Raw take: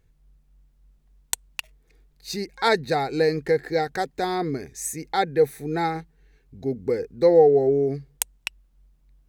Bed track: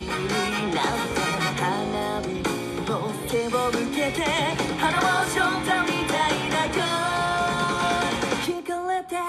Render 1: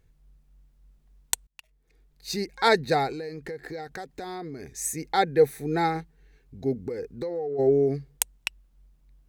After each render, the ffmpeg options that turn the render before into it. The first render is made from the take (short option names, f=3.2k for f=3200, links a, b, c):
-filter_complex "[0:a]asettb=1/sr,asplit=3[a][b][c];[a]atrim=end=3.124[d];[b]atrim=start=3.12:end=4.75,asetpts=PTS-STARTPTS,afade=t=in:d=0.004:c=qsin,afade=t=out:st=1.626:d=0.004:c=qsin,acompressor=threshold=-34dB:ratio=5:attack=3.2:release=140:knee=1:detection=peak[e];[c]atrim=start=4.746[f];[d][e]acrossfade=d=0.004:c1=hsin:c2=qsin[g];[g][f]acrossfade=d=0.004:c1=qsin:c2=hsin,asplit=3[h][i][j];[h]afade=t=out:st=6.87:d=0.02[k];[i]acompressor=threshold=-28dB:ratio=10:attack=3.2:release=140:knee=1:detection=peak,afade=t=in:st=6.87:d=0.02,afade=t=out:st=7.58:d=0.02[l];[j]afade=t=in:st=7.58:d=0.02[m];[k][l][m]amix=inputs=3:normalize=0,asplit=2[n][o];[n]atrim=end=1.47,asetpts=PTS-STARTPTS,afade=t=out:st=1.466:d=0.004:c=hsin[p];[o]atrim=start=1.47,asetpts=PTS-STARTPTS,afade=t=in:d=0.84[q];[p][q]concat=n=2:v=0:a=1"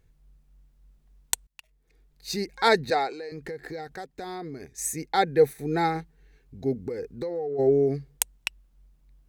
-filter_complex "[0:a]asettb=1/sr,asplit=3[a][b][c];[a]atrim=end=2.904[d];[b]atrim=start=2.9:end=3.32,asetpts=PTS-STARTPTS,afade=t=in:d=0.004:c=qsin,afade=t=out:st=0.416:d=0.004:c=qsin,highpass=390,lowpass=7.9k[e];[c]atrim=start=3.316[f];[d][e]acrossfade=d=0.004:c1=hsin:c2=qsin[g];[g][f]acrossfade=d=0.004:c1=qsin:c2=hsin,asettb=1/sr,asplit=3[h][i][j];[h]atrim=end=3.954[k];[i]atrim=start=3.95:end=5.59,asetpts=PTS-STARTPTS,afade=t=in:d=0.004:c=qsin,afade=t=out:st=1.636:d=0.004:c=qsin,agate=range=-7dB:threshold=-41dB:ratio=16:release=100:detection=peak[l];[j]atrim=start=5.586[m];[k][l]acrossfade=d=0.004:c1=hsin:c2=qsin[n];[n][m]acrossfade=d=0.004:c1=qsin:c2=hsin"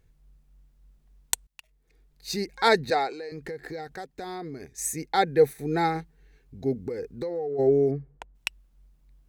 -filter_complex "[0:a]asplit=3[a][b][c];[a]afade=t=out:st=7.9:d=0.02[d];[b]lowpass=1.2k,afade=t=in:st=7.9:d=0.02,afade=t=out:st=8.34:d=0.02[e];[c]afade=t=in:st=8.34:d=0.02[f];[d][e][f]amix=inputs=3:normalize=0"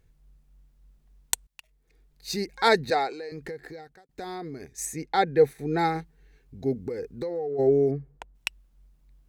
-filter_complex "[0:a]asettb=1/sr,asplit=3[a][b][c];[a]atrim=end=4.854[d];[b]atrim=start=4.85:end=5.79,asetpts=PTS-STARTPTS,afade=t=in:d=0.004:c=qsin,afade=t=out:st=0.936:d=0.004:c=qsin,highshelf=f=7.5k:g=-10.5[e];[c]atrim=start=5.786[f];[d][e]acrossfade=d=0.004:c1=hsin:c2=qsin[g];[g][f]acrossfade=d=0.004:c1=qsin:c2=hsin,asplit=2[h][i];[h]atrim=end=4.09,asetpts=PTS-STARTPTS,afade=t=out:st=3.46:d=0.63[j];[i]atrim=start=4.09,asetpts=PTS-STARTPTS,afade=t=in:d=0.004:c=hsin[k];[j][k]concat=n=2:v=0:a=1"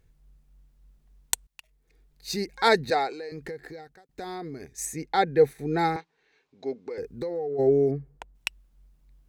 -filter_complex "[0:a]asettb=1/sr,asplit=3[a][b][c];[a]atrim=end=5.964[d];[b]atrim=start=5.96:end=6.98,asetpts=PTS-STARTPTS,afade=t=in:d=0.004:c=qsin,afade=t=out:st=1.016:d=0.004:c=qsin,highpass=430,equalizer=f=990:t=q:w=4:g=6,equalizer=f=2.4k:t=q:w=4:g=4,equalizer=f=3.8k:t=q:w=4:g=4,lowpass=f=6.5k:w=0.5412,lowpass=f=6.5k:w=1.3066[e];[c]atrim=start=6.976[f];[d][e]acrossfade=d=0.004:c1=hsin:c2=qsin[g];[g][f]acrossfade=d=0.004:c1=qsin:c2=hsin"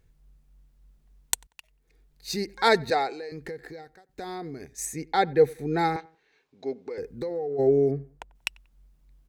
-filter_complex "[0:a]asplit=2[a][b];[b]adelay=93,lowpass=f=2k:p=1,volume=-23.5dB,asplit=2[c][d];[d]adelay=93,lowpass=f=2k:p=1,volume=0.35[e];[a][c][e]amix=inputs=3:normalize=0"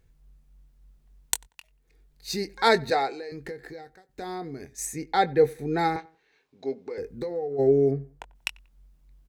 -filter_complex "[0:a]asplit=2[a][b];[b]adelay=22,volume=-12.5dB[c];[a][c]amix=inputs=2:normalize=0"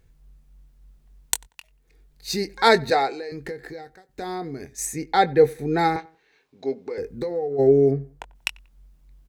-af "volume=4dB,alimiter=limit=-1dB:level=0:latency=1"